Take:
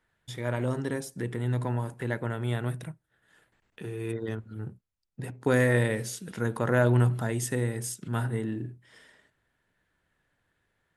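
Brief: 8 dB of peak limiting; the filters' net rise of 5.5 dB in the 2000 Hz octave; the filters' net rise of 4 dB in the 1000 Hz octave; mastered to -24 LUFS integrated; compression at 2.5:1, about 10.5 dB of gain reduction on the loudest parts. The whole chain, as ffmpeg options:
-af "equalizer=f=1k:t=o:g=3.5,equalizer=f=2k:t=o:g=5.5,acompressor=threshold=-33dB:ratio=2.5,volume=14dB,alimiter=limit=-12dB:level=0:latency=1"

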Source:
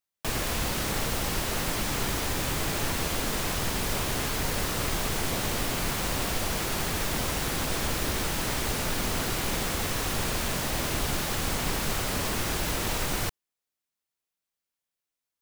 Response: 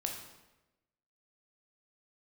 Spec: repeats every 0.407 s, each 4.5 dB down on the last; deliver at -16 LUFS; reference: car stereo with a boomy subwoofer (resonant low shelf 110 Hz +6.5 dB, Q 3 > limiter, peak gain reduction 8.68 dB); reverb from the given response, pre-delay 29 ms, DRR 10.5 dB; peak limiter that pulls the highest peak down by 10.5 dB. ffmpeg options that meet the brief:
-filter_complex "[0:a]alimiter=level_in=1.5dB:limit=-24dB:level=0:latency=1,volume=-1.5dB,aecho=1:1:407|814|1221|1628|2035|2442|2849|3256|3663:0.596|0.357|0.214|0.129|0.0772|0.0463|0.0278|0.0167|0.01,asplit=2[a][b];[1:a]atrim=start_sample=2205,adelay=29[c];[b][c]afir=irnorm=-1:irlink=0,volume=-12dB[d];[a][d]amix=inputs=2:normalize=0,lowshelf=f=110:t=q:w=3:g=6.5,volume=18.5dB,alimiter=limit=-5.5dB:level=0:latency=1"

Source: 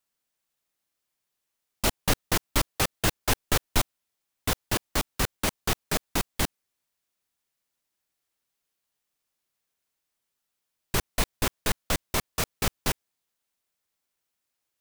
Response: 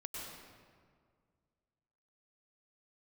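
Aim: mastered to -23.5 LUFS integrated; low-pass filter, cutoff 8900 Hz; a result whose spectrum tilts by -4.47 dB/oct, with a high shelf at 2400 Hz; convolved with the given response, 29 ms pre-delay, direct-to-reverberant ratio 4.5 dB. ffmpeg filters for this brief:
-filter_complex "[0:a]lowpass=8.9k,highshelf=f=2.4k:g=-7,asplit=2[a][b];[1:a]atrim=start_sample=2205,adelay=29[c];[b][c]afir=irnorm=-1:irlink=0,volume=-3.5dB[d];[a][d]amix=inputs=2:normalize=0,volume=7.5dB"

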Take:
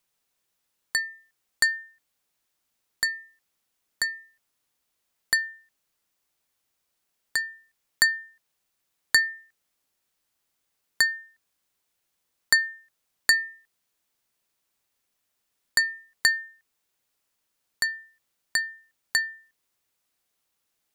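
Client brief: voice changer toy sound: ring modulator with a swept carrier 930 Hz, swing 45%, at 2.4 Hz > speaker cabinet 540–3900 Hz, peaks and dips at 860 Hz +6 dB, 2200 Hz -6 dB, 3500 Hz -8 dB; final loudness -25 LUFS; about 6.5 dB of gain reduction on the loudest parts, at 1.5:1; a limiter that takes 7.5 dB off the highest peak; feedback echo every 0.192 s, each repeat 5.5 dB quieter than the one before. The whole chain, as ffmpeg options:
-af "acompressor=threshold=-34dB:ratio=1.5,alimiter=limit=-15dB:level=0:latency=1,aecho=1:1:192|384|576|768|960|1152|1344:0.531|0.281|0.149|0.079|0.0419|0.0222|0.0118,aeval=exprs='val(0)*sin(2*PI*930*n/s+930*0.45/2.4*sin(2*PI*2.4*n/s))':c=same,highpass=540,equalizer=f=860:t=q:w=4:g=6,equalizer=f=2.2k:t=q:w=4:g=-6,equalizer=f=3.5k:t=q:w=4:g=-8,lowpass=f=3.9k:w=0.5412,lowpass=f=3.9k:w=1.3066,volume=17dB"

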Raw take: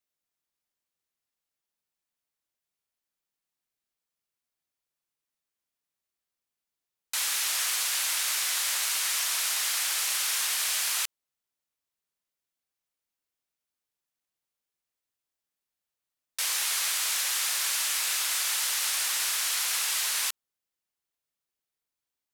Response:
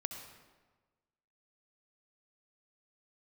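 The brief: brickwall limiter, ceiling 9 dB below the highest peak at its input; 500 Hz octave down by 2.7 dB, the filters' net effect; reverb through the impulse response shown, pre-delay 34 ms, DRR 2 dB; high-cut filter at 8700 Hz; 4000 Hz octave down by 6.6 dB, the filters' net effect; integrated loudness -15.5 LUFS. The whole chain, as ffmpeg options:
-filter_complex "[0:a]lowpass=8.7k,equalizer=f=500:t=o:g=-3.5,equalizer=f=4k:t=o:g=-8.5,alimiter=level_in=5dB:limit=-24dB:level=0:latency=1,volume=-5dB,asplit=2[a][b];[1:a]atrim=start_sample=2205,adelay=34[c];[b][c]afir=irnorm=-1:irlink=0,volume=-1.5dB[d];[a][d]amix=inputs=2:normalize=0,volume=18.5dB"

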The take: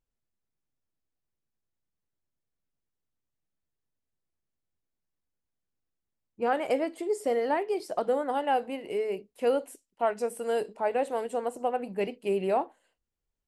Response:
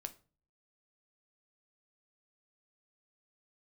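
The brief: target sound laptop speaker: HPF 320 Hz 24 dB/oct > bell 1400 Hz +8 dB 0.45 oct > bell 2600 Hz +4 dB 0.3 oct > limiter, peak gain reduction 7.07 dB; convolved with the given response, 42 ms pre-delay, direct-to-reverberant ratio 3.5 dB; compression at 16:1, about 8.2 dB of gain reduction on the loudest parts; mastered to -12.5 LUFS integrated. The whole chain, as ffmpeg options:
-filter_complex "[0:a]acompressor=threshold=-29dB:ratio=16,asplit=2[a][b];[1:a]atrim=start_sample=2205,adelay=42[c];[b][c]afir=irnorm=-1:irlink=0,volume=0dB[d];[a][d]amix=inputs=2:normalize=0,highpass=f=320:w=0.5412,highpass=f=320:w=1.3066,equalizer=f=1.4k:t=o:w=0.45:g=8,equalizer=f=2.6k:t=o:w=0.3:g=4,volume=23.5dB,alimiter=limit=-2.5dB:level=0:latency=1"

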